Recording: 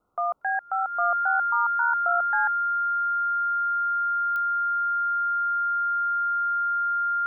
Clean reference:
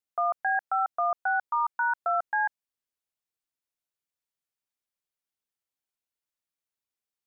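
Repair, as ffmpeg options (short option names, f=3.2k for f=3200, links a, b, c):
-af "adeclick=t=4,bandreject=f=1.4k:w=30,agate=range=-21dB:threshold=-17dB,asetnsamples=n=441:p=0,asendcmd='2.85 volume volume 6.5dB',volume=0dB"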